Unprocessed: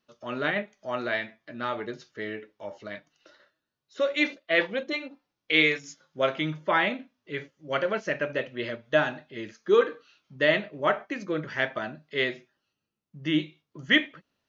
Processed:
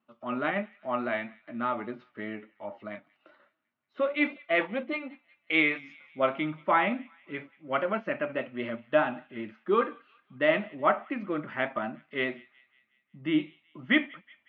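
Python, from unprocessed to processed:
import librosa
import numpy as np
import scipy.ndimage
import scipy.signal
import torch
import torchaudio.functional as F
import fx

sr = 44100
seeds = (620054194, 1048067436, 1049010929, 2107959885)

y = fx.vibrato(x, sr, rate_hz=4.9, depth_cents=33.0)
y = fx.cabinet(y, sr, low_hz=110.0, low_slope=12, high_hz=2600.0, hz=(150.0, 230.0, 450.0, 780.0, 1200.0, 1700.0), db=(-7, 6, -9, 3, 4, -7))
y = fx.echo_wet_highpass(y, sr, ms=184, feedback_pct=55, hz=1900.0, wet_db=-22.0)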